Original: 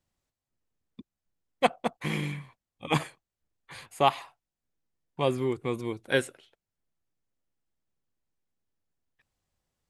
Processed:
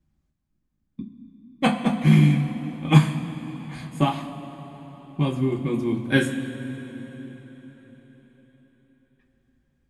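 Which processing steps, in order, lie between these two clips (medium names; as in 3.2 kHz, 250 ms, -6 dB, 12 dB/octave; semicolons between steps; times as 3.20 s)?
4.03–6.08 s: compression 2:1, threshold -30 dBFS, peak gain reduction 8 dB; resonant low shelf 330 Hz +8.5 dB, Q 3; band-stop 810 Hz, Q 26; two-slope reverb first 0.21 s, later 4.8 s, from -20 dB, DRR -3.5 dB; tape noise reduction on one side only decoder only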